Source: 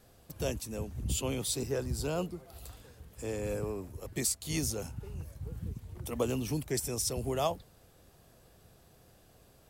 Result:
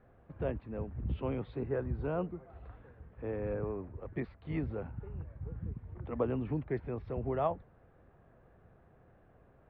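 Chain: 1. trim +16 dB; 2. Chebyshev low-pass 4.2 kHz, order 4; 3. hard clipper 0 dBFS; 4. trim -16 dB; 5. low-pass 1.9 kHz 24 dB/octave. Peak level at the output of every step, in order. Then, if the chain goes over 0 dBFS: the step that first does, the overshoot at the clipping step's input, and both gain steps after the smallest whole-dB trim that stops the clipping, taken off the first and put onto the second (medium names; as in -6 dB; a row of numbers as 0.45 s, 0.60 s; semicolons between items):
-1.0 dBFS, -3.0 dBFS, -3.0 dBFS, -19.0 dBFS, -19.5 dBFS; nothing clips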